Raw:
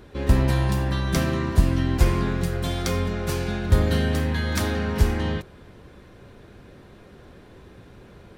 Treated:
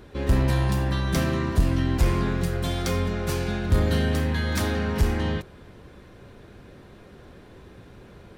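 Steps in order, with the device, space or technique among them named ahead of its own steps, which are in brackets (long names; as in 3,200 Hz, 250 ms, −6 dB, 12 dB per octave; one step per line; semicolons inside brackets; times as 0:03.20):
saturation between pre-emphasis and de-emphasis (high-shelf EQ 2,200 Hz +10.5 dB; soft clipping −11 dBFS, distortion −16 dB; high-shelf EQ 2,200 Hz −10.5 dB)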